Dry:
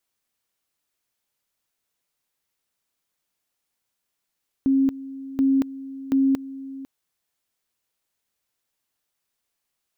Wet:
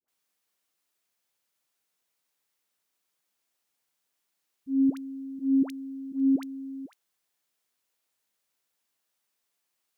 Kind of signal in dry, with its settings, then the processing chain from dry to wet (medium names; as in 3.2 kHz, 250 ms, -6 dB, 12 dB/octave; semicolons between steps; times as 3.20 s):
two-level tone 270 Hz -15.5 dBFS, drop 17 dB, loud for 0.23 s, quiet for 0.50 s, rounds 3
high-pass 210 Hz 6 dB/octave; slow attack 147 ms; phase dispersion highs, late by 82 ms, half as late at 740 Hz